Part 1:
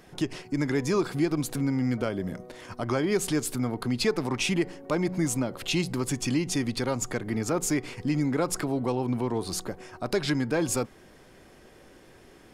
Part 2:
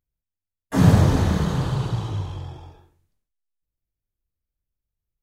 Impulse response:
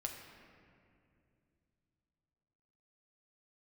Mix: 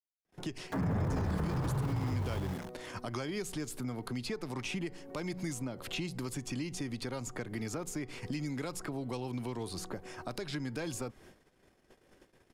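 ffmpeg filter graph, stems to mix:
-filter_complex "[0:a]agate=range=-33dB:threshold=-50dB:ratio=16:detection=peak,acrossover=split=110|2300[a][b][c];[a]acompressor=threshold=-47dB:ratio=4[d];[b]acompressor=threshold=-38dB:ratio=4[e];[c]acompressor=threshold=-45dB:ratio=4[f];[d][e][f]amix=inputs=3:normalize=0,adelay=250,volume=0dB[g];[1:a]lowpass=f=2.2k:w=0.5412,lowpass=f=2.2k:w=1.3066,aeval=exprs='val(0)*gte(abs(val(0)),0.015)':c=same,volume=-3dB[h];[g][h]amix=inputs=2:normalize=0,alimiter=level_in=1.5dB:limit=-24dB:level=0:latency=1:release=57,volume=-1.5dB"

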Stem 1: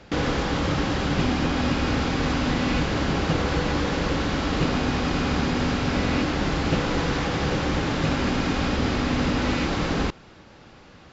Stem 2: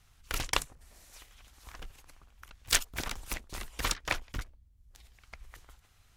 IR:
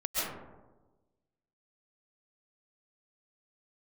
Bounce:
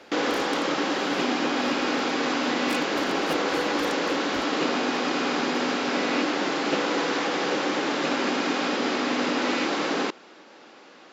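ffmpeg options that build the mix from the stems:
-filter_complex "[0:a]highpass=f=270:w=0.5412,highpass=f=270:w=1.3066,volume=1.5dB[a];[1:a]highpass=83,acompressor=threshold=-36dB:ratio=6,volume=-3.5dB[b];[a][b]amix=inputs=2:normalize=0"

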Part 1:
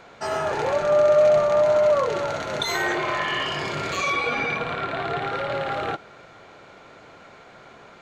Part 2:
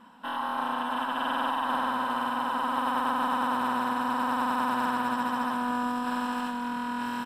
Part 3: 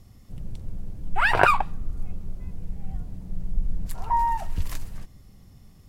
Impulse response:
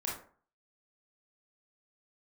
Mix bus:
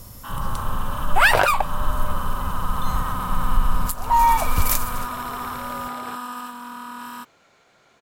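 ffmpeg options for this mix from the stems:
-filter_complex "[0:a]adelay=200,volume=-12dB,afade=t=in:st=3.97:d=0.35:silence=0.316228[a];[1:a]equalizer=f=1.2k:t=o:w=0.26:g=14.5,volume=-6.5dB[b];[2:a]equalizer=f=560:t=o:w=0.42:g=11.5,acontrast=67,volume=1.5dB[c];[a][b][c]amix=inputs=3:normalize=0,aemphasis=mode=production:type=75fm,alimiter=limit=-6dB:level=0:latency=1:release=407"

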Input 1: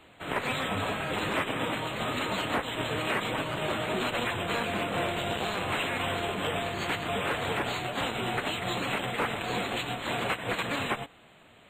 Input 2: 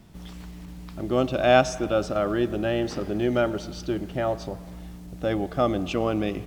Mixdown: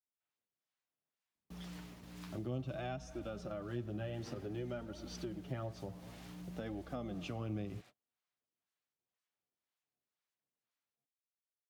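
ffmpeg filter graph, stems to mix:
-filter_complex "[0:a]aeval=exprs='0.02*(abs(mod(val(0)/0.02+3,4)-2)-1)':c=same,acrossover=split=680[a][b];[a]aeval=exprs='val(0)*(1-0.7/2+0.7/2*cos(2*PI*2*n/s))':c=same[c];[b]aeval=exprs='val(0)*(1-0.7/2-0.7/2*cos(2*PI*2*n/s))':c=same[d];[c][d]amix=inputs=2:normalize=0,volume=-19.5dB[e];[1:a]bandreject=f=7.9k:w=13,flanger=delay=3:depth=7.5:regen=19:speed=0.55:shape=triangular,adelay=1350,volume=-4dB[f];[e][f]amix=inputs=2:normalize=0,agate=range=-36dB:threshold=-52dB:ratio=16:detection=peak,highpass=72,acrossover=split=150[g][h];[h]acompressor=threshold=-43dB:ratio=5[i];[g][i]amix=inputs=2:normalize=0"

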